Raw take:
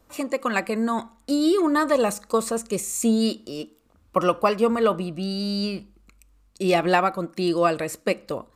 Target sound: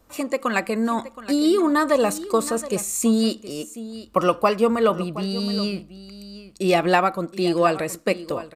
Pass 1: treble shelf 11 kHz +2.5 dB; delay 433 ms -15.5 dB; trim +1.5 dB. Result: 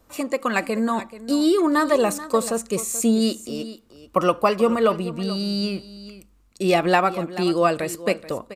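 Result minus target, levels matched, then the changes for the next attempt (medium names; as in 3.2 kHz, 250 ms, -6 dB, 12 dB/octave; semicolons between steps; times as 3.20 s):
echo 288 ms early
change: delay 721 ms -15.5 dB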